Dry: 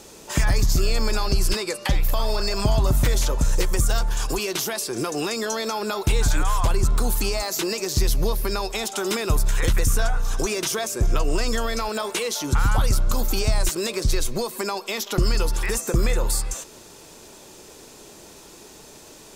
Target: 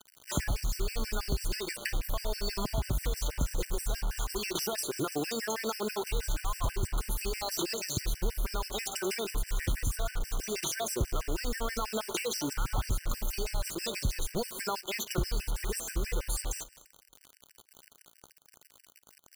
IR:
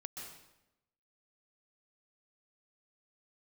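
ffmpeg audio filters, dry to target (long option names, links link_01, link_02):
-filter_complex "[0:a]asettb=1/sr,asplit=3[link_01][link_02][link_03];[link_01]atrim=end=8.244[link_04];[link_02]atrim=start=8.24:end=8.69,asetpts=PTS-STARTPTS,afade=type=in:duration=0.004:curve=qsin,afade=type=out:start_time=0.446:duration=0.004:curve=qsin,lowshelf=frequency=110:gain=7.5[link_05];[link_03]atrim=start=8.686[link_06];[link_04][link_05]acrossfade=duration=0.004:curve1=hsin:curve2=qsin[link_07];[link_07][link_06]acrossfade=duration=0.004:curve1=qsin:curve2=hsin,acompressor=threshold=-25dB:ratio=4,acrusher=bits=5:mix=0:aa=0.000001,asplit=2[link_08][link_09];[1:a]atrim=start_sample=2205,lowshelf=frequency=73:gain=-7.5,adelay=56[link_10];[link_09][link_10]afir=irnorm=-1:irlink=0,volume=-15.5dB[link_11];[link_08][link_11]amix=inputs=2:normalize=0,afftfilt=real='re*gt(sin(2*PI*6.2*pts/sr)*(1-2*mod(floor(b*sr/1024/1500),2)),0)':imag='im*gt(sin(2*PI*6.2*pts/sr)*(1-2*mod(floor(b*sr/1024/1500),2)),0)':win_size=1024:overlap=0.75,volume=-2dB"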